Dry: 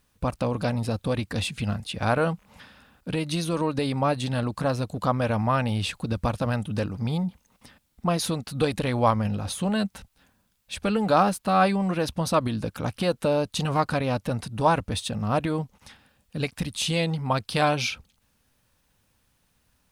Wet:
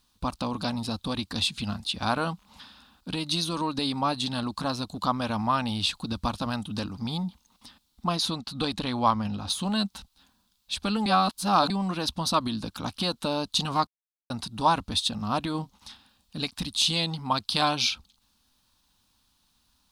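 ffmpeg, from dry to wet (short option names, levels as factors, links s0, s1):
-filter_complex "[0:a]asettb=1/sr,asplit=3[s0][s1][s2];[s0]atrim=end=8.164[s3];[s1]atrim=start=8.16:end=9.5,asetpts=PTS-STARTPTS,afade=t=in:d=0.004:c=qsin,afade=t=out:st=1.336:d=0.004:c=qsin,highshelf=f=7300:g=-9.5[s4];[s2]atrim=start=9.496[s5];[s3][s4]acrossfade=d=0.004:c1=hsin:c2=qsin[s6];[s6][s5]acrossfade=d=0.004:c1=qsin:c2=hsin,asettb=1/sr,asplit=3[s7][s8][s9];[s7]atrim=end=15.514[s10];[s8]atrim=start=15.51:end=16.44,asetpts=PTS-STARTPTS,afade=t=in:d=0.004:c=qsin,afade=t=out:st=0.926:d=0.004:c=qsin,asplit=2[s11][s12];[s12]adelay=32,volume=0.266[s13];[s11][s13]amix=inputs=2:normalize=0,atrim=end_sample=41013[s14];[s9]atrim=start=16.436[s15];[s10][s14]acrossfade=d=0.004:c1=hsin:c2=qsin[s16];[s16][s15]acrossfade=d=0.004:c1=qsin:c2=hsin,asplit=5[s17][s18][s19][s20][s21];[s17]atrim=end=11.062[s22];[s18]atrim=start=11.058:end=11.702,asetpts=PTS-STARTPTS,areverse[s23];[s19]atrim=start=11.698:end=13.87,asetpts=PTS-STARTPTS,afade=t=out:st=2.168:d=0.004:c=hsin[s24];[s20]atrim=start=13.87:end=14.3,asetpts=PTS-STARTPTS,volume=0[s25];[s21]atrim=start=14.3,asetpts=PTS-STARTPTS,afade=t=in:d=0.004:c=hsin[s26];[s22][s23]acrossfade=d=0.004:c1=hsin:c2=hsin[s27];[s24][s25][s26]concat=n=3:v=0:a=1[s28];[s27][s28]acrossfade=d=0.004:c1=hsin:c2=hsin,equalizer=f=125:t=o:w=1:g=-8,equalizer=f=250:t=o:w=1:g=4,equalizer=f=500:t=o:w=1:g=-10,equalizer=f=1000:t=o:w=1:g=6,equalizer=f=2000:t=o:w=1:g=-8,equalizer=f=4000:t=o:w=1:g=11,volume=0.841"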